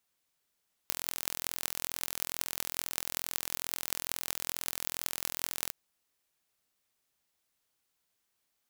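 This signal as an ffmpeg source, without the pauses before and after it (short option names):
-f lavfi -i "aevalsrc='0.75*eq(mod(n,1043),0)*(0.5+0.5*eq(mod(n,8344),0))':d=4.82:s=44100"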